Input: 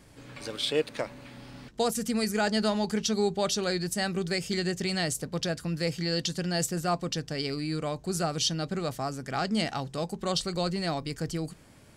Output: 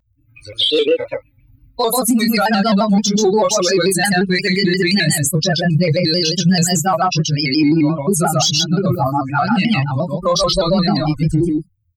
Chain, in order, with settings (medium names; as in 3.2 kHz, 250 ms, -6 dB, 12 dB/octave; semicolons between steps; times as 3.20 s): expander on every frequency bin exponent 3; on a send: delay 131 ms -3 dB; on the sum: chorus 0.39 Hz, delay 19.5 ms, depth 2 ms; in parallel at -4 dB: saturation -31.5 dBFS, distortion -15 dB; on the sum: compression, threshold -35 dBFS, peak gain reduction 9 dB; loudness maximiser +32 dB; vibrato with a chosen wave square 5.7 Hz, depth 100 cents; trim -6 dB